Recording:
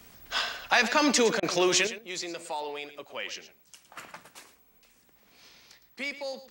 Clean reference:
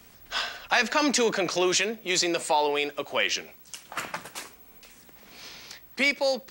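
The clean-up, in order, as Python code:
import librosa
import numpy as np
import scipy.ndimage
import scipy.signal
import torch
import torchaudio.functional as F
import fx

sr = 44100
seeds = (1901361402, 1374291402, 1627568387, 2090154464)

y = fx.fix_interpolate(x, sr, at_s=(1.4,), length_ms=25.0)
y = fx.fix_echo_inverse(y, sr, delay_ms=112, level_db=-13.0)
y = fx.fix_level(y, sr, at_s=1.87, step_db=11.0)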